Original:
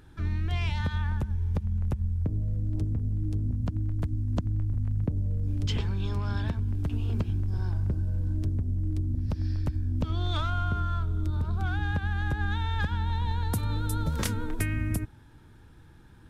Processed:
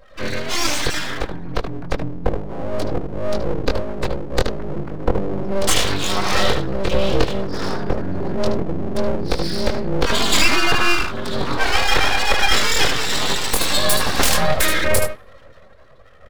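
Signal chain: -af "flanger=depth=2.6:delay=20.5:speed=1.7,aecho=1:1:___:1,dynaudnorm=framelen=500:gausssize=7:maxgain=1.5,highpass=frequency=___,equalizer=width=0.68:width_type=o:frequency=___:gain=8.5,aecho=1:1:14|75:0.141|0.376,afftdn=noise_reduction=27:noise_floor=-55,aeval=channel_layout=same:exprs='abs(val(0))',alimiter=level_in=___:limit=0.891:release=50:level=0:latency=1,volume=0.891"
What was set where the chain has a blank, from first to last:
3.8, 210, 4300, 8.41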